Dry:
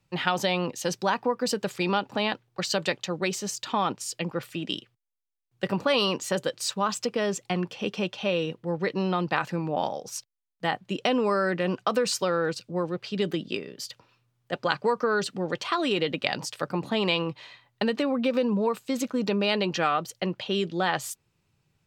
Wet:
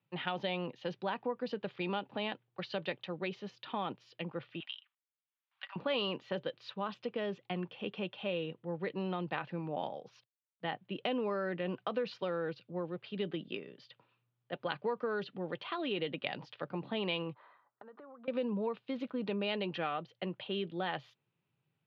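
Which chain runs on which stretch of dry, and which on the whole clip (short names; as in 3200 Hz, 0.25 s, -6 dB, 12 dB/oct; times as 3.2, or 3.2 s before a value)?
4.6–5.76 inverse Chebyshev high-pass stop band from 470 Hz + three-band squash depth 70%
17.34–18.28 HPF 350 Hz + resonant high shelf 1900 Hz -13 dB, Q 3 + compressor 12:1, threshold -40 dBFS
whole clip: elliptic band-pass 120–3400 Hz, stop band 40 dB; dynamic EQ 1200 Hz, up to -4 dB, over -37 dBFS, Q 1.5; gain -9 dB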